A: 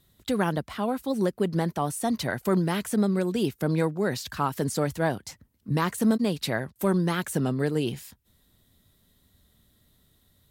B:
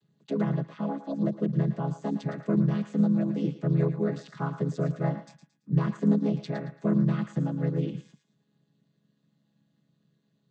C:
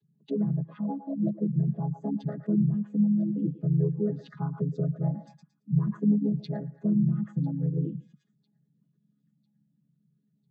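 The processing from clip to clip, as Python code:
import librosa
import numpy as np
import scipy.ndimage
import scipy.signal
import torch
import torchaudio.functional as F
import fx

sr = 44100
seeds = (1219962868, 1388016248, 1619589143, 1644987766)

y1 = fx.chord_vocoder(x, sr, chord='minor triad', root=49)
y1 = fx.echo_thinned(y1, sr, ms=112, feedback_pct=31, hz=910.0, wet_db=-9)
y2 = fx.spec_expand(y1, sr, power=1.9)
y2 = fx.echo_wet_highpass(y2, sr, ms=999, feedback_pct=43, hz=3000.0, wet_db=-23)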